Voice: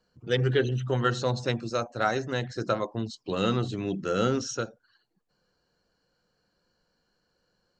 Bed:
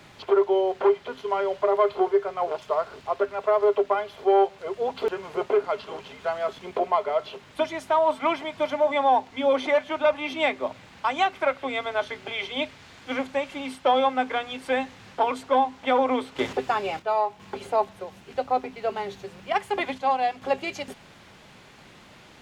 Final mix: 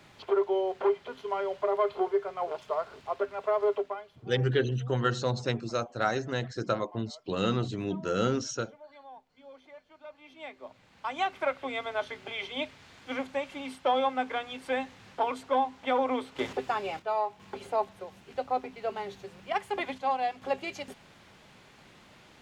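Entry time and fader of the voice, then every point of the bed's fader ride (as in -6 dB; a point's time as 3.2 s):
4.00 s, -2.0 dB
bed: 3.73 s -6 dB
4.42 s -29 dB
9.89 s -29 dB
11.31 s -5.5 dB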